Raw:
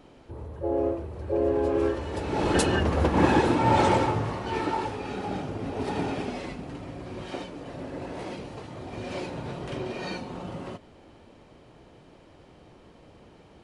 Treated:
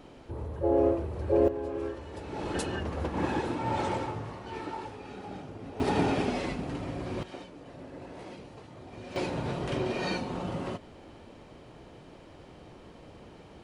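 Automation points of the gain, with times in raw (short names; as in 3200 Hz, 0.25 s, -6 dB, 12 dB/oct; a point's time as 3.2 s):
+2 dB
from 1.48 s -9.5 dB
from 5.8 s +3 dB
from 7.23 s -8 dB
from 9.16 s +2.5 dB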